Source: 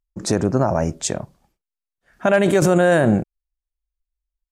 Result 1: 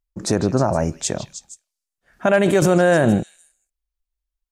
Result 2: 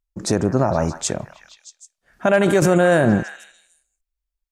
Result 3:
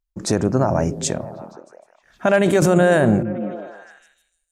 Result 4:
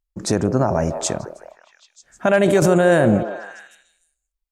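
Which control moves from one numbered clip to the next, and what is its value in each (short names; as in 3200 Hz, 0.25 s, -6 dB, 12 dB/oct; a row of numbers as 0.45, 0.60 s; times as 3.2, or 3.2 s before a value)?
delay with a stepping band-pass, band-pass from: 3500, 1200, 150, 470 Hz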